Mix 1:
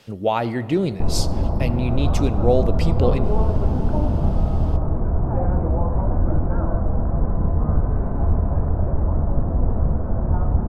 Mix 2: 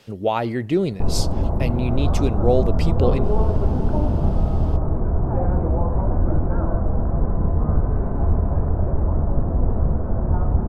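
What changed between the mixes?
speech: send off
master: add parametric band 390 Hz +3 dB 0.35 octaves

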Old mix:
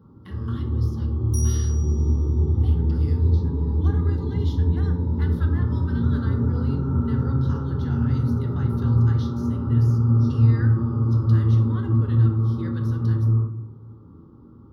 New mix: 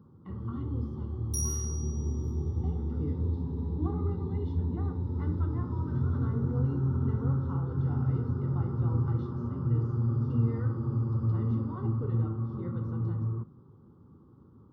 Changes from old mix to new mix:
speech: add Savitzky-Golay smoothing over 65 samples
first sound: send off

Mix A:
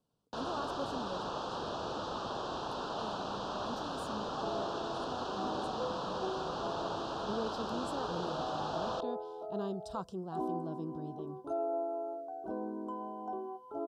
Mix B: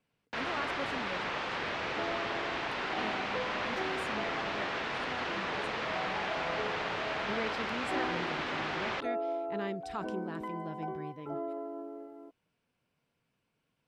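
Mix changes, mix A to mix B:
second sound: entry −2.45 s
master: remove Butterworth band-reject 2,100 Hz, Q 0.87

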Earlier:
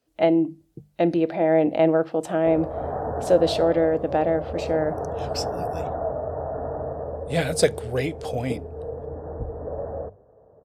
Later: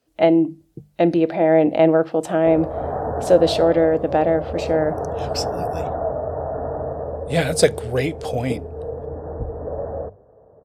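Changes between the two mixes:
speech +4.0 dB
background +3.5 dB

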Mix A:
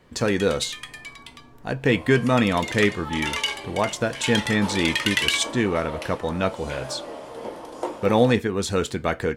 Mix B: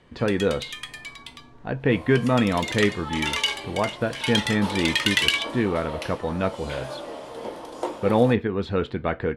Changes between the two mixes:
speech: add high-frequency loss of the air 410 metres
master: add parametric band 3,700 Hz +3.5 dB 0.69 octaves

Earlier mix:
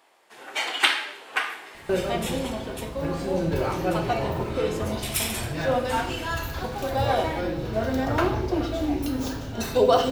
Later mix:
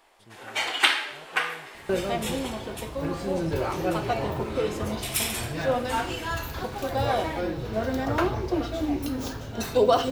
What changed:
speech: unmuted
second sound: send −8.0 dB

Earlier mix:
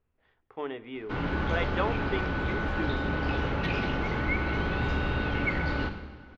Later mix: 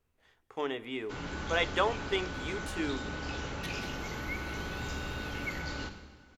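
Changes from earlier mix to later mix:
first sound −10.0 dB
second sound −11.5 dB
master: remove high-frequency loss of the air 340 metres

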